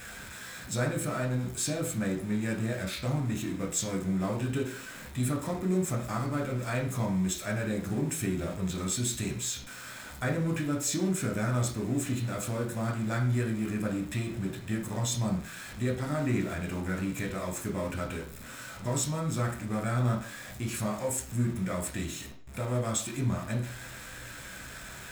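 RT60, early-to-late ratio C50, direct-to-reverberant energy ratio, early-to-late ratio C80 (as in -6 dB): 0.45 s, 8.0 dB, 0.5 dB, 12.5 dB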